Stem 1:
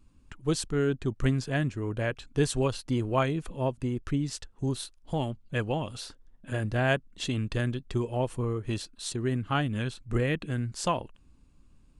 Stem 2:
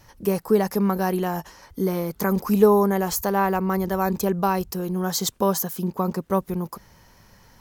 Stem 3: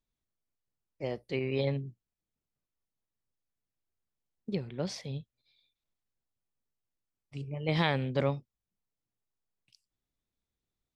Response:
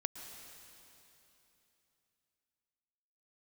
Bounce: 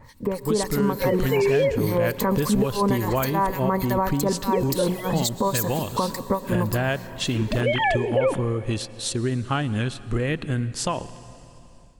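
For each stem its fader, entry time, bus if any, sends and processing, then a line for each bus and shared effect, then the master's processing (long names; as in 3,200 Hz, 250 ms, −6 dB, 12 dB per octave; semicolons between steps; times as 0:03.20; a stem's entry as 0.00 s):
−1.0 dB, 0.00 s, send −7.5 dB, downward compressor, threshold −28 dBFS, peak gain reduction 9 dB
+2.5 dB, 0.00 s, send −5.5 dB, EQ curve with evenly spaced ripples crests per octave 1, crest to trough 10 dB; downward compressor, threshold −27 dBFS, peak gain reduction 17 dB; two-band tremolo in antiphase 3.5 Hz, depth 100%, crossover 1,900 Hz
+2.5 dB, 0.00 s, send −9 dB, three sine waves on the formant tracks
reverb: on, RT60 3.1 s, pre-delay 105 ms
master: automatic gain control gain up to 6 dB; brickwall limiter −12.5 dBFS, peak gain reduction 8 dB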